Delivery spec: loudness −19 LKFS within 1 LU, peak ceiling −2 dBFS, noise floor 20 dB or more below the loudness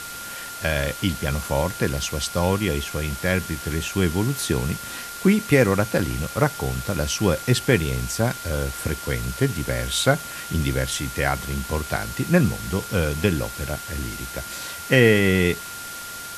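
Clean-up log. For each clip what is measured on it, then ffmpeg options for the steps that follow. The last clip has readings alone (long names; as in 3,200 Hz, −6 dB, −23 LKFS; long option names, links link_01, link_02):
interfering tone 1,400 Hz; level of the tone −36 dBFS; background noise floor −35 dBFS; target noise floor −43 dBFS; integrated loudness −23.0 LKFS; sample peak −1.5 dBFS; target loudness −19.0 LKFS
→ -af "bandreject=frequency=1400:width=30"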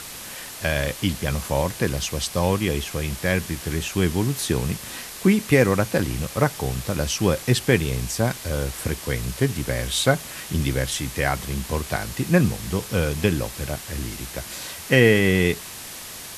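interfering tone none found; background noise floor −37 dBFS; target noise floor −43 dBFS
→ -af "afftdn=noise_reduction=6:noise_floor=-37"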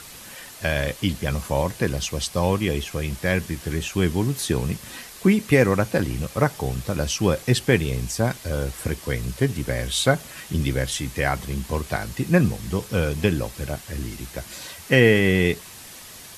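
background noise floor −42 dBFS; target noise floor −44 dBFS
→ -af "afftdn=noise_reduction=6:noise_floor=-42"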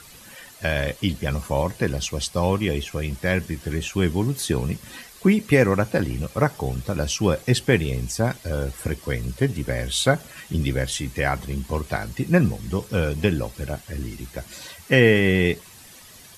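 background noise floor −46 dBFS; integrated loudness −23.5 LKFS; sample peak −2.0 dBFS; target loudness −19.0 LKFS
→ -af "volume=4.5dB,alimiter=limit=-2dB:level=0:latency=1"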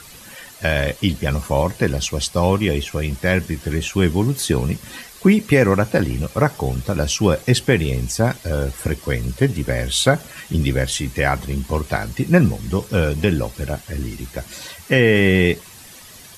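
integrated loudness −19.5 LKFS; sample peak −2.0 dBFS; background noise floor −42 dBFS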